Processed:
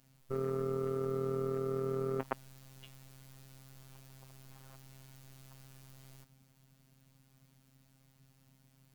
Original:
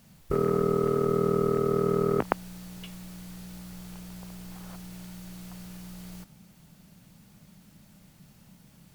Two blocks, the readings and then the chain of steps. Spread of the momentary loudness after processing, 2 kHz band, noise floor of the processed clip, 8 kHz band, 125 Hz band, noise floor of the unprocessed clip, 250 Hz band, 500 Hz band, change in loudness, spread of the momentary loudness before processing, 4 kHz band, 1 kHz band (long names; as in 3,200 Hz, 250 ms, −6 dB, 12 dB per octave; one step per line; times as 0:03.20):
21 LU, −10.0 dB, −68 dBFS, −10.5 dB, −9.0 dB, −57 dBFS, −12.0 dB, −9.5 dB, −10.0 dB, 18 LU, −10.5 dB, −12.0 dB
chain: phases set to zero 133 Hz
level −8.5 dB